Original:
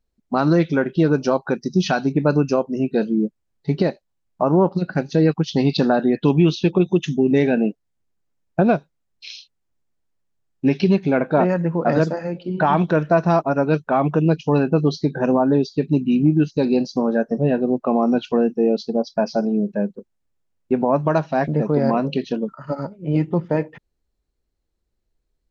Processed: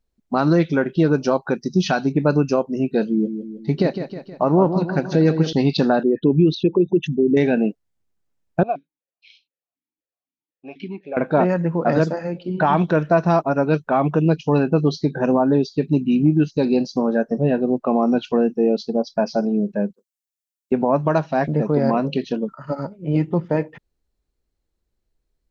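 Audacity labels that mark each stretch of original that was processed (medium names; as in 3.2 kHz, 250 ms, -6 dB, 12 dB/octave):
3.090000	5.530000	feedback delay 158 ms, feedback 53%, level -9 dB
6.030000	7.370000	resonances exaggerated exponent 2
8.630000	11.170000	stepped vowel filter 8 Hz
19.930000	20.720000	differentiator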